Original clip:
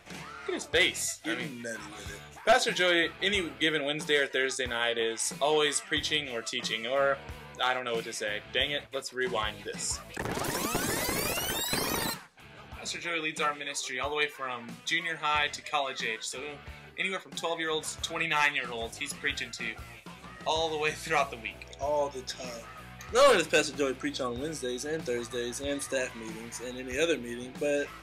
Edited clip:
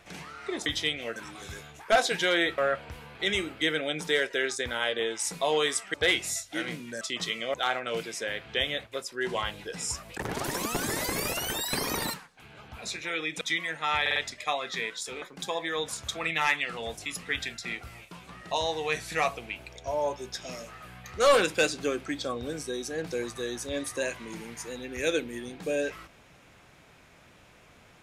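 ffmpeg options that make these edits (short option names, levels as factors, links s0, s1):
-filter_complex "[0:a]asplit=13[s0][s1][s2][s3][s4][s5][s6][s7][s8][s9][s10][s11][s12];[s0]atrim=end=0.662[s13];[s1]atrim=start=5.938:end=6.442[s14];[s2]atrim=start=1.728:end=3.152[s15];[s3]atrim=start=6.968:end=7.542[s16];[s4]atrim=start=3.148:end=5.942[s17];[s5]atrim=start=0.658:end=1.732[s18];[s6]atrim=start=6.438:end=6.972[s19];[s7]atrim=start=7.538:end=13.412[s20];[s8]atrim=start=14.818:end=15.472[s21];[s9]atrim=start=15.418:end=15.472[s22];[s10]atrim=start=15.418:end=15.472[s23];[s11]atrim=start=15.418:end=16.482[s24];[s12]atrim=start=17.168[s25];[s13][s14]acrossfade=d=0.004:c1=hsin:c2=hsin[s26];[s26][s15]acrossfade=d=0.004:c1=hsin:c2=hsin[s27];[s27][s16]acrossfade=d=0.004:c1=hsin:c2=hsin[s28];[s28][s17]acrossfade=d=0.004:c1=hsin:c2=hsin[s29];[s29][s18]acrossfade=d=0.004:c1=hsin:c2=hsin[s30];[s30][s19]acrossfade=d=0.004:c1=hsin:c2=hsin[s31];[s31][s20]acrossfade=d=0.004:c1=hsin:c2=hsin[s32];[s32][s21]acrossfade=d=0.004:c1=hsin:c2=hsin[s33];[s33][s22]acrossfade=d=0.004:c1=hsin:c2=hsin[s34];[s34][s23]acrossfade=d=0.004:c1=hsin:c2=hsin[s35];[s35][s24]acrossfade=d=0.004:c1=hsin:c2=hsin[s36];[s36][s25]acrossfade=d=0.004:c1=hsin:c2=hsin"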